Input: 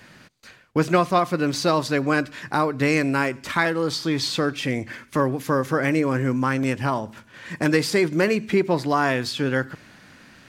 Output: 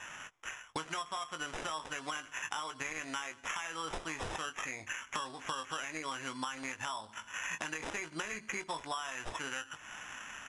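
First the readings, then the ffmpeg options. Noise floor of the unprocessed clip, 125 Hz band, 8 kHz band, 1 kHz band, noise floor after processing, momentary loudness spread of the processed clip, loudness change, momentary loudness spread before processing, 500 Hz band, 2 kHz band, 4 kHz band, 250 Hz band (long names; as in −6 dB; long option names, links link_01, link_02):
−51 dBFS, −27.0 dB, −6.5 dB, −14.0 dB, −57 dBFS, 5 LU, −17.0 dB, 7 LU, −24.0 dB, −12.5 dB, −11.5 dB, −25.5 dB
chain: -filter_complex "[0:a]lowshelf=frequency=690:width_type=q:width=1.5:gain=-10.5,alimiter=limit=-16.5dB:level=0:latency=1:release=66,asplit=2[link_01][link_02];[link_02]adelay=19,volume=-8dB[link_03];[link_01][link_03]amix=inputs=2:normalize=0,adynamicsmooth=sensitivity=3:basefreq=2300,acrusher=samples=10:mix=1:aa=0.000001,equalizer=frequency=150:width_type=o:width=2.2:gain=-9.5,aresample=22050,aresample=44100,acompressor=threshold=-42dB:ratio=16,volume=6.5dB"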